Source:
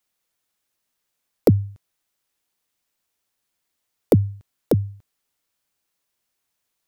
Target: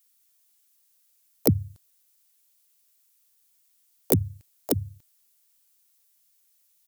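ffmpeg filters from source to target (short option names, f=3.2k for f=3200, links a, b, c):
-filter_complex "[0:a]crystalizer=i=6:c=0,asplit=3[a][b][c];[b]asetrate=35002,aresample=44100,atempo=1.25992,volume=-7dB[d];[c]asetrate=58866,aresample=44100,atempo=0.749154,volume=-10dB[e];[a][d][e]amix=inputs=3:normalize=0,volume=-8.5dB"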